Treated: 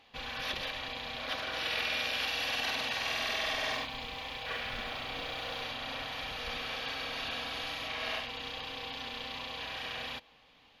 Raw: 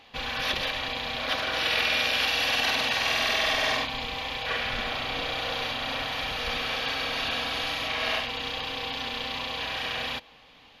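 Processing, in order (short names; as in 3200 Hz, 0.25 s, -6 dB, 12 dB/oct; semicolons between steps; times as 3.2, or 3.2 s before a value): 3.71–5.62 modulation noise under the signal 31 dB; gain -8 dB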